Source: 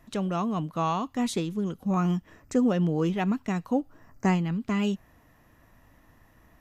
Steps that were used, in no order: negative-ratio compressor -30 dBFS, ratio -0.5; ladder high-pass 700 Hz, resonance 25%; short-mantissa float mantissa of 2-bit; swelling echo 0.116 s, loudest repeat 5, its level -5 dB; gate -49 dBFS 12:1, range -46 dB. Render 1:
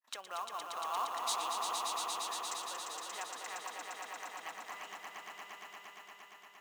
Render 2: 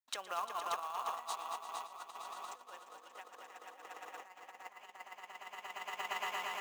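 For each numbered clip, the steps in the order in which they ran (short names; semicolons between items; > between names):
negative-ratio compressor > gate > ladder high-pass > short-mantissa float > swelling echo; swelling echo > gate > negative-ratio compressor > ladder high-pass > short-mantissa float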